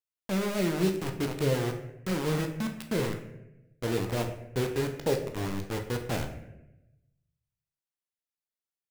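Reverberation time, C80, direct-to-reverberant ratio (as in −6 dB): 0.90 s, 11.0 dB, 3.5 dB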